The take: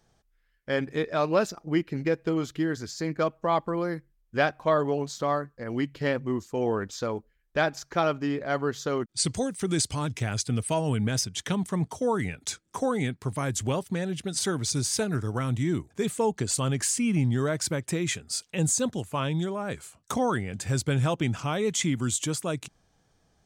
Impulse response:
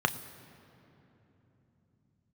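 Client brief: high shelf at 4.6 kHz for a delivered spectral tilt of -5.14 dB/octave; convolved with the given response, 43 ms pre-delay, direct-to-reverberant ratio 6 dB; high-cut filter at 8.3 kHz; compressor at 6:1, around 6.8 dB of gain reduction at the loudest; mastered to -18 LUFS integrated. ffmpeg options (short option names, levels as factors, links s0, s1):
-filter_complex "[0:a]lowpass=8300,highshelf=f=4600:g=-3,acompressor=threshold=0.0501:ratio=6,asplit=2[s0][s1];[1:a]atrim=start_sample=2205,adelay=43[s2];[s1][s2]afir=irnorm=-1:irlink=0,volume=0.15[s3];[s0][s3]amix=inputs=2:normalize=0,volume=4.47"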